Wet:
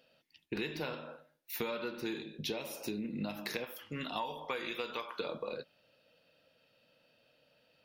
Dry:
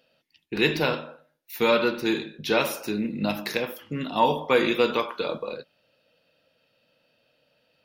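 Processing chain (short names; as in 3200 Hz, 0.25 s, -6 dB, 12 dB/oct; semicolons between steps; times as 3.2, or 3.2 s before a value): 3.64–5.19 bell 210 Hz -9 dB 3 oct; compressor 16:1, threshold -32 dBFS, peak gain reduction 17 dB; 2.22–3.04 bell 1400 Hz -10 dB 0.78 oct; gain -2 dB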